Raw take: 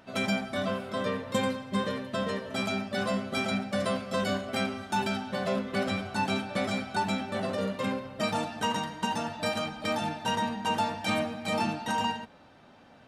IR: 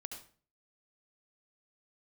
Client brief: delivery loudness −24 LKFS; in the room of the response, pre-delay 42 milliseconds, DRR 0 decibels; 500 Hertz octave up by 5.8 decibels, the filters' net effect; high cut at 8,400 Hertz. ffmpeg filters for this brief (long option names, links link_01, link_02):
-filter_complex "[0:a]lowpass=8400,equalizer=frequency=500:width_type=o:gain=7,asplit=2[link_01][link_02];[1:a]atrim=start_sample=2205,adelay=42[link_03];[link_02][link_03]afir=irnorm=-1:irlink=0,volume=3dB[link_04];[link_01][link_04]amix=inputs=2:normalize=0,volume=1dB"